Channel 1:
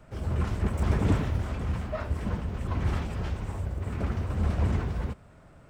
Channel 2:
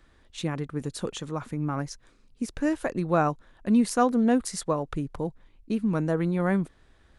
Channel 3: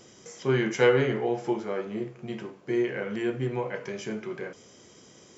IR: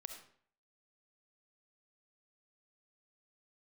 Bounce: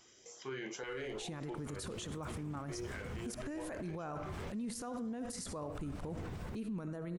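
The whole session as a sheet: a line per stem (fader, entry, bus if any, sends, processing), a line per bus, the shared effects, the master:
-8.5 dB, 1.45 s, bus A, no send, high-pass 88 Hz 12 dB/octave
+0.5 dB, 0.85 s, bus A, send -5 dB, none
-7.0 dB, 0.00 s, no bus, no send, peaking EQ 170 Hz -15 dB 1.4 oct; LFO notch saw up 2.4 Hz 450–2700 Hz
bus A: 0.0 dB, treble shelf 5 kHz +9 dB; compression 2.5:1, threshold -35 dBFS, peak gain reduction 13 dB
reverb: on, RT60 0.55 s, pre-delay 25 ms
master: peak limiter -34 dBFS, peak gain reduction 21 dB

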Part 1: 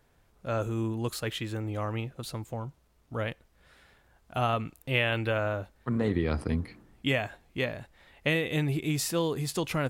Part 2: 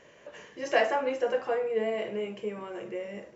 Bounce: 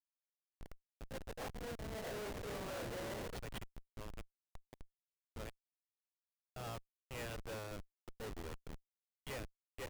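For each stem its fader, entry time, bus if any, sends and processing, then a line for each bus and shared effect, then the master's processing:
-7.0 dB, 2.20 s, no send, tone controls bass -7 dB, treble -3 dB; comb 2.1 ms, depth 33%
0.88 s -14.5 dB -> 1.46 s -4.5 dB, 0.00 s, no send, spectral levelling over time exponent 0.6; tone controls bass -9 dB, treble -14 dB; compressor with a negative ratio -30 dBFS, ratio -0.5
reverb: none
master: peaking EQ 200 Hz -12 dB 2.1 oct; Schmitt trigger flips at -39 dBFS; peak limiter -42 dBFS, peak gain reduction 5.5 dB

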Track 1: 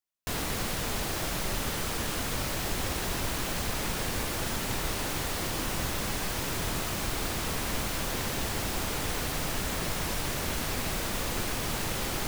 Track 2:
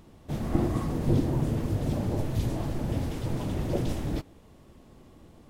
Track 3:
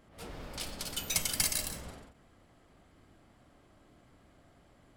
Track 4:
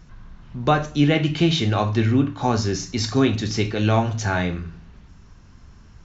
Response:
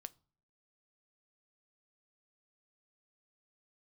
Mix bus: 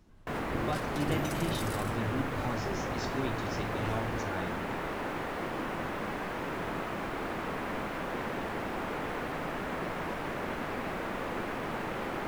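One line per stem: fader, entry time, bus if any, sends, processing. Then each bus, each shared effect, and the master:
+1.0 dB, 0.00 s, no send, three-band isolator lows -14 dB, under 170 Hz, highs -23 dB, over 2.3 kHz
-11.0 dB, 0.00 s, no send, none
-8.5 dB, 0.15 s, no send, peak limiter -25 dBFS, peak gain reduction 10 dB
-17.0 dB, 0.00 s, no send, none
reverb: none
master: none

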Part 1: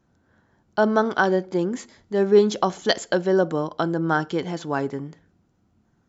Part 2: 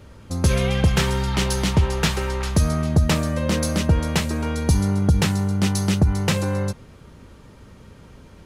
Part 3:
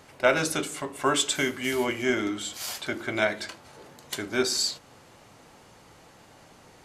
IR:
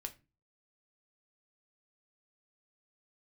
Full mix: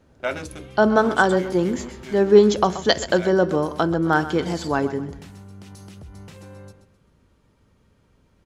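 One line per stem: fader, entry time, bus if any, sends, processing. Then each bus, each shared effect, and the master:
0.0 dB, 0.00 s, send -5 dB, echo send -11.5 dB, none
-15.5 dB, 0.00 s, no send, echo send -11.5 dB, compression, threshold -19 dBFS, peak gain reduction 7.5 dB; peak limiter -18.5 dBFS, peak gain reduction 8 dB
-7.5 dB, 0.00 s, send -4.5 dB, no echo send, local Wiener filter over 41 samples; auto duck -13 dB, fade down 0.40 s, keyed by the first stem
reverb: on, RT60 0.30 s, pre-delay 4 ms
echo: feedback delay 130 ms, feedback 36%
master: none

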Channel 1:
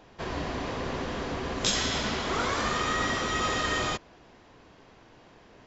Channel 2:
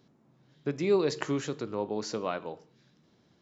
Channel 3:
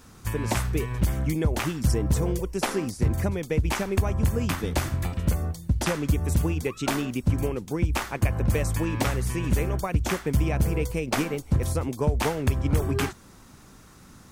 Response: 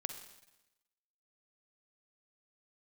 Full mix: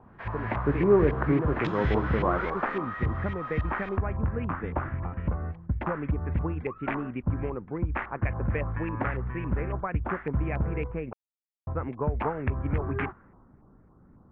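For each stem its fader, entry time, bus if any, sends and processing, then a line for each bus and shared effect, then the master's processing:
2.27 s -5 dB -> 3.06 s -13 dB, 0.00 s, no send, high-pass 680 Hz
+0.5 dB, 0.00 s, no send, low-pass 2.4 kHz; tilt EQ -2.5 dB/octave
-5.0 dB, 0.00 s, muted 11.13–11.67 s, no send, level-controlled noise filter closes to 510 Hz, open at -20.5 dBFS; low-pass 2.8 kHz 24 dB/octave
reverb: none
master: treble shelf 5.1 kHz -9.5 dB; LFO low-pass saw up 3.6 Hz 980–2300 Hz

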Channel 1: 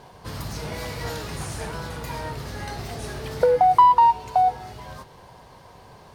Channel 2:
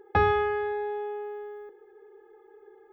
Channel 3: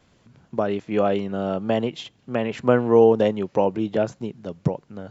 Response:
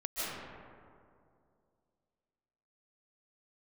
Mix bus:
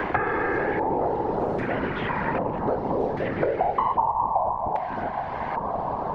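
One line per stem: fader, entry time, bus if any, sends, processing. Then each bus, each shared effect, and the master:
0.0 dB, 0.00 s, send -17 dB, auto duck -9 dB, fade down 0.25 s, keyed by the third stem
+2.5 dB, 0.00 s, no send, compression, threshold -29 dBFS, peak gain reduction 11 dB
-17.5 dB, 0.00 s, no send, level flattener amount 50%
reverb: on, RT60 2.4 s, pre-delay 110 ms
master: LFO low-pass square 0.63 Hz 880–2000 Hz; whisper effect; three bands compressed up and down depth 100%

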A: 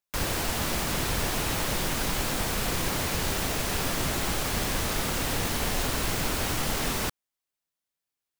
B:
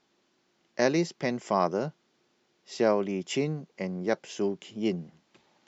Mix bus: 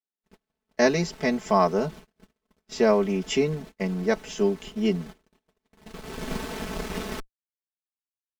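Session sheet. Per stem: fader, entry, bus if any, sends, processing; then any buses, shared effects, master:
-7.0 dB, 0.10 s, no send, peaking EQ 180 Hz +14.5 dB 0.97 oct; Chebyshev shaper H 3 -10 dB, 6 -11 dB, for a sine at -9.5 dBFS; low-pass 3.3 kHz 6 dB/octave; auto duck -14 dB, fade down 0.30 s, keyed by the second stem
+2.0 dB, 0.00 s, no send, none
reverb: none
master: gate -42 dBFS, range -38 dB; comb 4.6 ms, depth 85%

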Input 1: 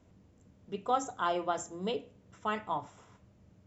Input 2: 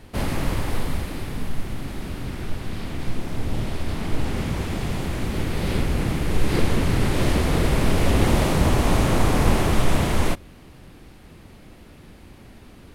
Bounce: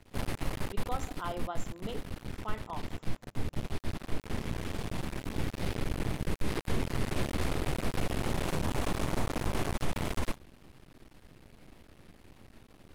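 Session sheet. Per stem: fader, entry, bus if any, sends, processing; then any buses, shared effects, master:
-7.0 dB, 0.00 s, no send, none
-6.0 dB, 0.00 s, no send, half-wave rectifier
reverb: none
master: peak limiter -19.5 dBFS, peak gain reduction 8 dB

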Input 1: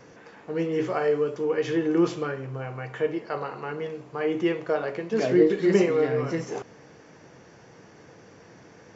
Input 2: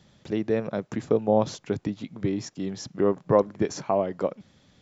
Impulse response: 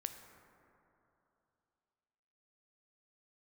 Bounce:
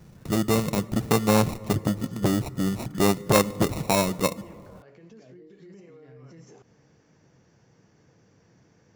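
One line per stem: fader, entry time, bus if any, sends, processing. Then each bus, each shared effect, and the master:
-14.0 dB, 0.00 s, no send, compression 6:1, threshold -32 dBFS, peak gain reduction 17 dB; peak limiter -30.5 dBFS, peak gain reduction 9 dB
-1.0 dB, 0.00 s, send -8.5 dB, sample-rate reducer 1.6 kHz, jitter 0%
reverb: on, RT60 3.0 s, pre-delay 8 ms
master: tone controls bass +10 dB, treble +6 dB; transformer saturation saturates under 960 Hz

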